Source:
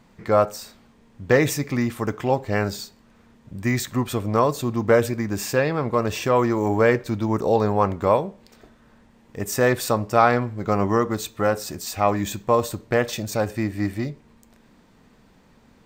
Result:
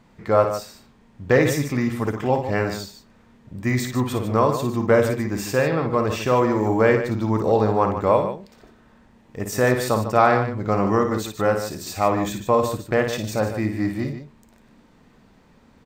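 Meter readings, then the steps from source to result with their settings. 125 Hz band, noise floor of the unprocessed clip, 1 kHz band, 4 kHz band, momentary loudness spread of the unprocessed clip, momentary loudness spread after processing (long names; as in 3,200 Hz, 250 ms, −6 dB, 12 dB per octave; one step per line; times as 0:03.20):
+1.5 dB, −56 dBFS, +1.0 dB, −0.5 dB, 9 LU, 9 LU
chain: high-shelf EQ 4,800 Hz −4.5 dB
on a send: loudspeakers that aren't time-aligned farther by 19 metres −7 dB, 51 metres −10 dB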